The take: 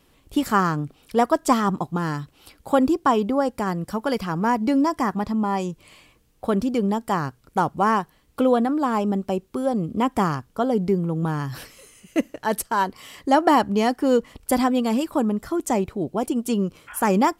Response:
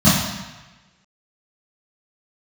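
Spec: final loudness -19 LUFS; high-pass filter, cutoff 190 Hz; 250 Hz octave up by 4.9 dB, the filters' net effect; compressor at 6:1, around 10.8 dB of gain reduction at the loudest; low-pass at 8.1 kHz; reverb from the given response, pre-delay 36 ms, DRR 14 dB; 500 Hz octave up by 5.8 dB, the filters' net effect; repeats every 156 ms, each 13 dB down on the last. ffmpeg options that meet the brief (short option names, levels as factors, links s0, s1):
-filter_complex "[0:a]highpass=190,lowpass=8100,equalizer=f=250:t=o:g=6,equalizer=f=500:t=o:g=5.5,acompressor=threshold=0.1:ratio=6,aecho=1:1:156|312|468:0.224|0.0493|0.0108,asplit=2[s0][s1];[1:a]atrim=start_sample=2205,adelay=36[s2];[s1][s2]afir=irnorm=-1:irlink=0,volume=0.0141[s3];[s0][s3]amix=inputs=2:normalize=0,volume=1.68"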